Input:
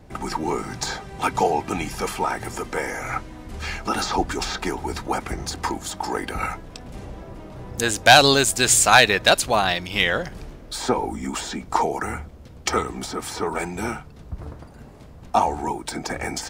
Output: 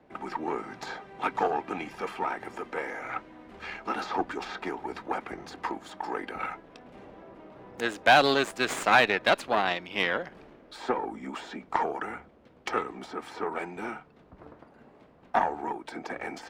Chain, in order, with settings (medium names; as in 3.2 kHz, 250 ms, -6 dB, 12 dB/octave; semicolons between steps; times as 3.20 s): Chebyshev shaper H 4 -13 dB, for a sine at -2.5 dBFS; three-band isolator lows -19 dB, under 200 Hz, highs -18 dB, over 3.4 kHz; trim -6.5 dB